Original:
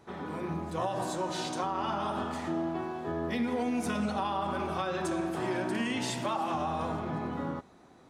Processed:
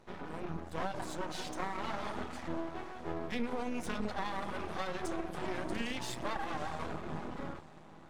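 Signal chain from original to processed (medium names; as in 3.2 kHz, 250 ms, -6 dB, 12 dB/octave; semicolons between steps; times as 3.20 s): on a send at -13.5 dB: reverberation RT60 1.0 s, pre-delay 6 ms; on the sum: reverb removal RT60 0.9 s; echo that smears into a reverb 607 ms, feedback 42%, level -15 dB; half-wave rectifier; treble shelf 11 kHz -7 dB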